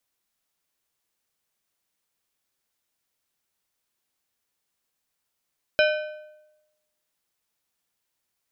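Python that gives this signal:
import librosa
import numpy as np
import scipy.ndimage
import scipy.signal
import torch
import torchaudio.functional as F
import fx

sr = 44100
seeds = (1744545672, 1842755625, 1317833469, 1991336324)

y = fx.strike_metal(sr, length_s=1.55, level_db=-16, body='plate', hz=610.0, decay_s=0.99, tilt_db=3.5, modes=6)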